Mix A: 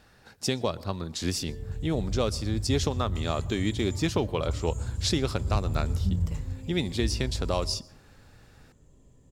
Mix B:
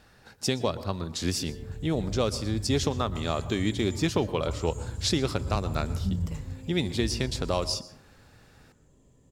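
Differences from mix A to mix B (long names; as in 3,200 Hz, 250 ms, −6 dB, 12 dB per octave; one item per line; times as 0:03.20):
speech: send +7.5 dB
background: add low-shelf EQ 73 Hz −8 dB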